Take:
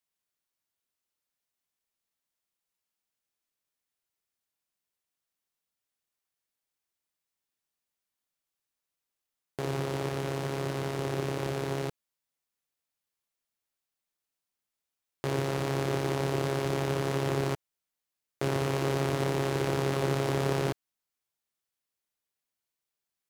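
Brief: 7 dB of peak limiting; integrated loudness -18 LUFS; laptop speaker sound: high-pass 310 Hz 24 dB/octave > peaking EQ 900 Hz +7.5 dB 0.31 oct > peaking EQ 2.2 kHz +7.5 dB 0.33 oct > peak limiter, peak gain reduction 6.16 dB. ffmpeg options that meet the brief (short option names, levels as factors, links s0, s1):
-af "alimiter=limit=0.0841:level=0:latency=1,highpass=f=310:w=0.5412,highpass=f=310:w=1.3066,equalizer=f=900:t=o:w=0.31:g=7.5,equalizer=f=2200:t=o:w=0.33:g=7.5,volume=10.6,alimiter=limit=0.562:level=0:latency=1"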